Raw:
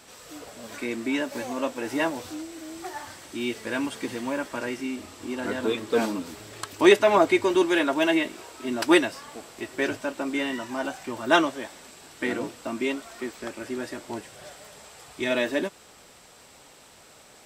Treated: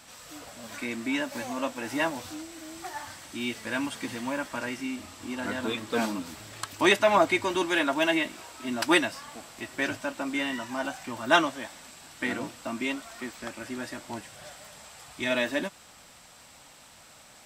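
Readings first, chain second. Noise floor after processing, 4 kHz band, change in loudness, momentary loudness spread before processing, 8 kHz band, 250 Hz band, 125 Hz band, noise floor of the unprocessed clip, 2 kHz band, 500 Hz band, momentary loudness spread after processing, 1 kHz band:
-53 dBFS, 0.0 dB, -3.0 dB, 19 LU, 0.0 dB, -4.0 dB, -0.5 dB, -52 dBFS, 0.0 dB, -5.0 dB, 18 LU, -1.0 dB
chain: peaking EQ 410 Hz -10.5 dB 0.63 oct

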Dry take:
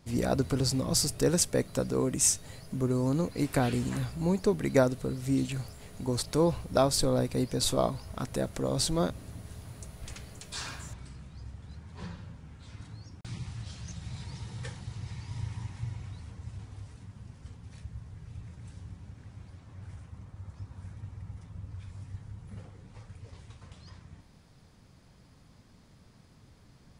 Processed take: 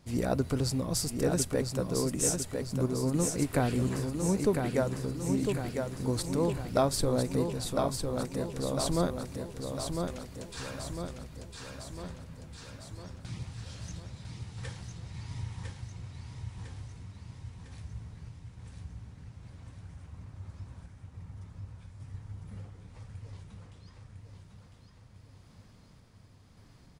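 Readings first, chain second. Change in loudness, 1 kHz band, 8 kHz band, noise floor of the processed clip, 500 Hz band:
-2.5 dB, -1.0 dB, -3.5 dB, -56 dBFS, -1.0 dB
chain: random-step tremolo; feedback delay 1003 ms, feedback 53%, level -5 dB; dynamic bell 5.1 kHz, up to -4 dB, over -47 dBFS, Q 0.8

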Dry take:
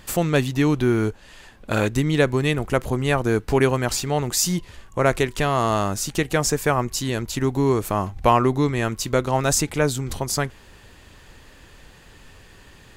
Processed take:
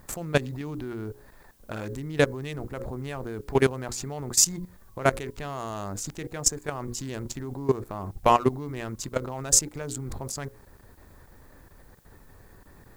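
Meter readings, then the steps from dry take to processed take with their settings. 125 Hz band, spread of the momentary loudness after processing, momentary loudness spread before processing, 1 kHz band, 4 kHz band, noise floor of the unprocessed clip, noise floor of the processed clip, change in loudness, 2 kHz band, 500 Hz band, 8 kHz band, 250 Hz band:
-9.5 dB, 15 LU, 6 LU, -6.0 dB, -5.5 dB, -49 dBFS, -53 dBFS, -6.0 dB, -8.0 dB, -7.0 dB, +0.5 dB, -10.0 dB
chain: local Wiener filter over 15 samples; hum notches 60/120/180/240/300/360/420/480/540 Hz; dynamic bell 7 kHz, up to +7 dB, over -41 dBFS, Q 1.3; level held to a coarse grid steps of 17 dB; added noise blue -64 dBFS

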